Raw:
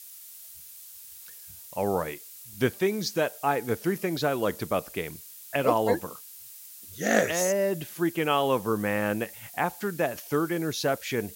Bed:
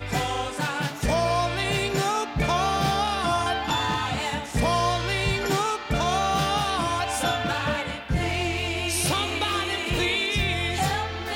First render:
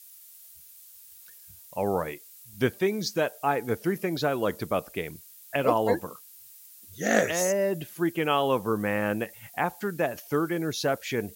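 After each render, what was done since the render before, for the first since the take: noise reduction 6 dB, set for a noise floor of -46 dBFS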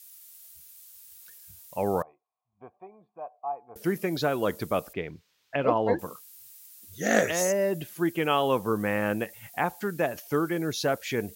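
2.02–3.76 s: cascade formant filter a; 4.93–5.99 s: distance through air 220 m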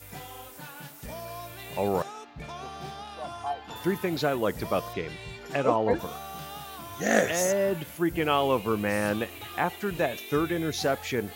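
add bed -16.5 dB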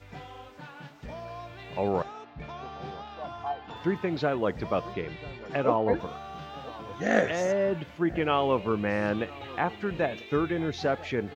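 distance through air 190 m; echo from a far wall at 170 m, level -19 dB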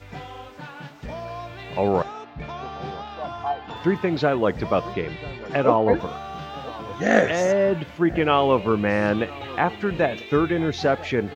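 trim +6.5 dB; peak limiter -2 dBFS, peak gain reduction 1 dB

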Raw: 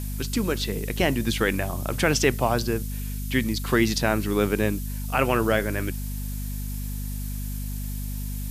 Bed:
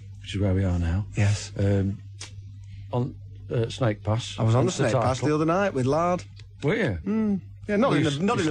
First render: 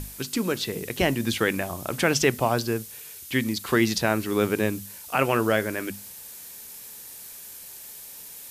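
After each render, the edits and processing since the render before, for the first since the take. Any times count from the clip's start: hum notches 50/100/150/200/250 Hz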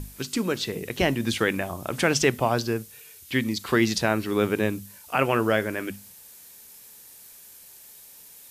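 noise print and reduce 6 dB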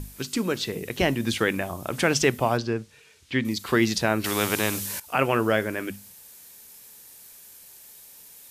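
2.57–3.45 s: distance through air 100 m; 4.24–5.00 s: spectrum-flattening compressor 2:1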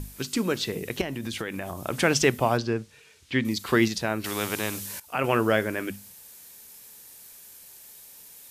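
1.01–1.83 s: compression 4:1, threshold -29 dBFS; 3.88–5.24 s: gain -4.5 dB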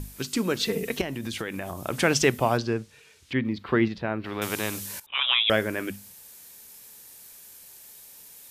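0.59–0.99 s: comb 4.4 ms, depth 97%; 3.33–4.42 s: distance through air 380 m; 5.06–5.50 s: frequency inversion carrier 3.7 kHz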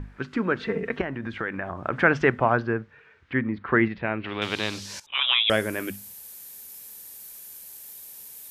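low-pass sweep 1.6 kHz -> 13 kHz, 3.68–5.82 s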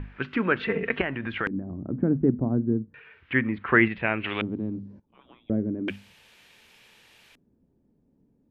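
LFO low-pass square 0.34 Hz 260–2800 Hz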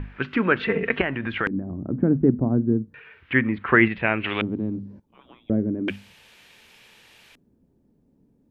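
trim +3.5 dB; peak limiter -3 dBFS, peak gain reduction 2 dB

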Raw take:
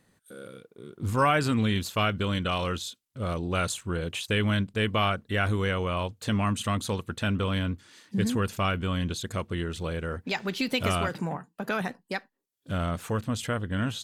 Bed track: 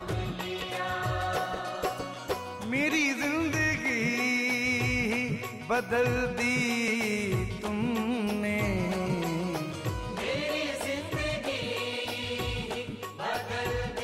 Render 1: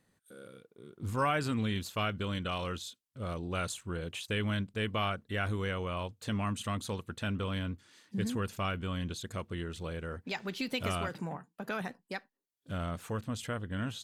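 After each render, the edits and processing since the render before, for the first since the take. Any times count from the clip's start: trim -7 dB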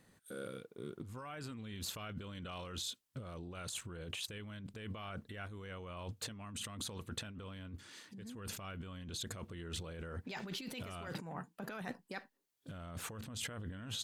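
peak limiter -30 dBFS, peak gain reduction 10.5 dB; compressor with a negative ratio -45 dBFS, ratio -1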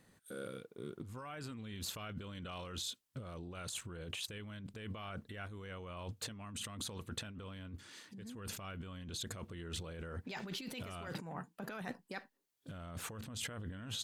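no audible change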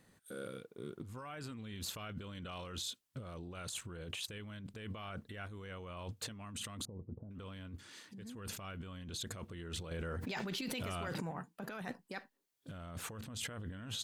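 6.85–7.31 s: Gaussian low-pass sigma 14 samples; 9.91–11.31 s: level flattener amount 100%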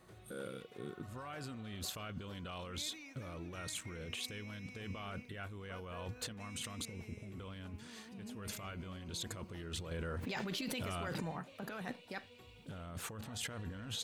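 add bed track -26.5 dB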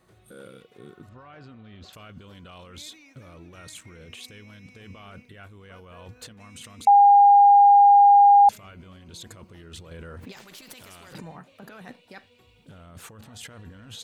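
1.09–1.93 s: distance through air 190 m; 6.87–8.49 s: bleep 810 Hz -10 dBFS; 10.32–11.13 s: spectrum-flattening compressor 2:1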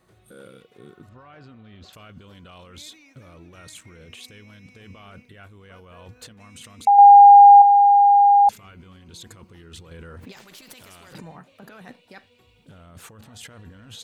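6.98–7.62 s: dynamic bell 800 Hz, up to +6 dB, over -27 dBFS; 8.47–10.15 s: band-stop 610 Hz, Q 5.3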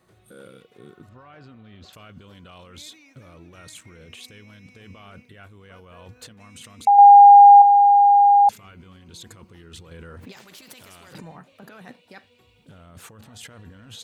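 high-pass 55 Hz

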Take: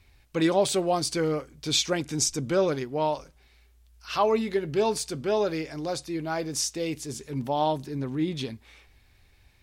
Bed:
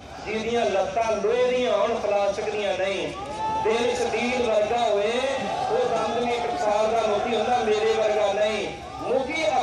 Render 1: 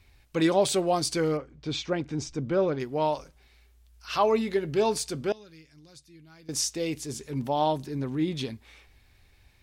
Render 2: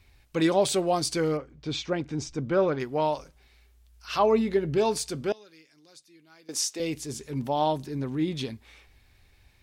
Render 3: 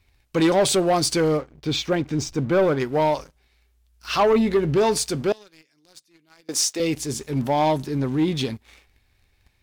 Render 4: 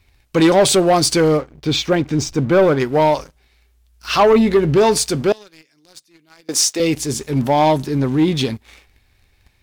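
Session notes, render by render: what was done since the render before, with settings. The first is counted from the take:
1.37–2.80 s: tape spacing loss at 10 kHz 24 dB; 5.32–6.49 s: amplifier tone stack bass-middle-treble 6-0-2
2.30–3.01 s: dynamic bell 1.3 kHz, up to +5 dB, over -41 dBFS, Q 0.77; 4.19–4.78 s: tilt EQ -1.5 dB/octave; 5.33–6.80 s: high-pass 320 Hz
waveshaping leveller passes 2
trim +6 dB

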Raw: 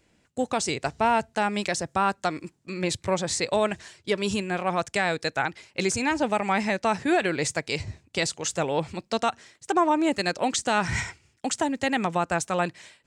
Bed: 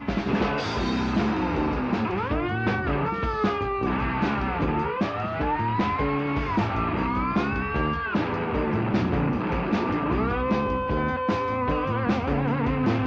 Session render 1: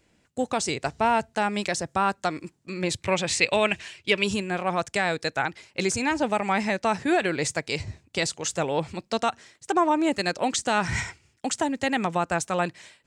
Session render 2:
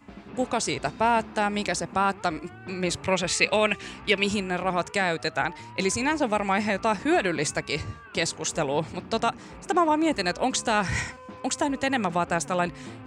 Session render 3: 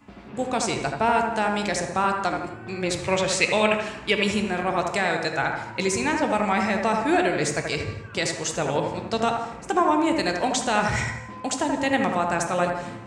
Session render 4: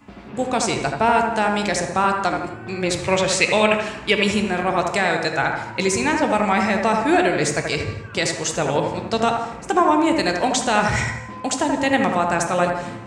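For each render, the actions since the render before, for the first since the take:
3.04–4.24 s: peaking EQ 2.6 kHz +13 dB 0.73 oct
add bed -18 dB
bucket-brigade echo 79 ms, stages 1024, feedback 45%, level -4 dB; gated-style reverb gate 290 ms falling, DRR 7.5 dB
trim +4 dB; peak limiter -3 dBFS, peak gain reduction 1.5 dB

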